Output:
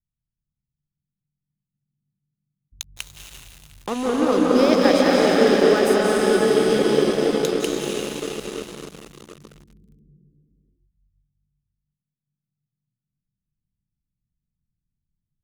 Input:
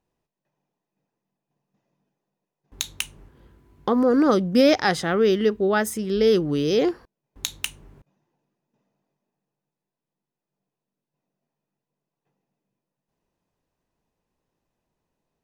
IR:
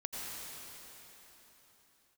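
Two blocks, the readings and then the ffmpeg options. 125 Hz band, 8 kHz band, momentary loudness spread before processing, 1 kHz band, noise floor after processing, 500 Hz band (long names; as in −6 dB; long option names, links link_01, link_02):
0.0 dB, +2.5 dB, 14 LU, +3.5 dB, below −85 dBFS, +4.0 dB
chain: -filter_complex "[1:a]atrim=start_sample=2205,asetrate=23373,aresample=44100[link_01];[0:a][link_01]afir=irnorm=-1:irlink=0,acrossover=split=170[link_02][link_03];[link_02]acompressor=threshold=-41dB:ratio=6[link_04];[link_03]aeval=exprs='sgn(val(0))*max(abs(val(0))-0.0398,0)':channel_layout=same[link_05];[link_04][link_05]amix=inputs=2:normalize=0,volume=-2dB"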